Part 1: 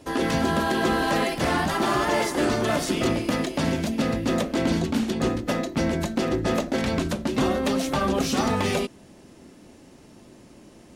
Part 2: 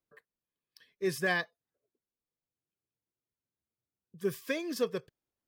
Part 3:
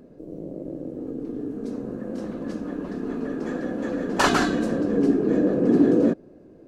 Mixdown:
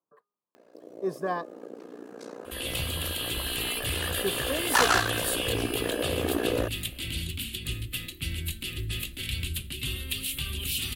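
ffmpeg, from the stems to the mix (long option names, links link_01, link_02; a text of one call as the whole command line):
ffmpeg -i stem1.wav -i stem2.wav -i stem3.wav -filter_complex "[0:a]firequalizer=gain_entry='entry(100,0);entry(200,-18);entry(360,-10);entry(630,-28);entry(1300,-12);entry(2800,9);entry(5700,-12)':delay=0.05:min_phase=1,acrossover=split=180|3000[link_01][link_02][link_03];[link_02]acompressor=threshold=-54dB:ratio=2[link_04];[link_01][link_04][link_03]amix=inputs=3:normalize=0,aexciter=amount=12.3:drive=4.5:freq=8400,adelay=2450,volume=1dB[link_05];[1:a]highpass=180,highshelf=frequency=1500:width_type=q:width=3:gain=-11.5,bandreject=frequency=408.1:width_type=h:width=4,bandreject=frequency=816.2:width_type=h:width=4,bandreject=frequency=1224.3:width_type=h:width=4,volume=1dB[link_06];[2:a]highpass=810,acontrast=56,tremolo=f=59:d=0.919,adelay=550,volume=1.5dB[link_07];[link_05][link_06][link_07]amix=inputs=3:normalize=0,asoftclip=type=hard:threshold=-15.5dB" out.wav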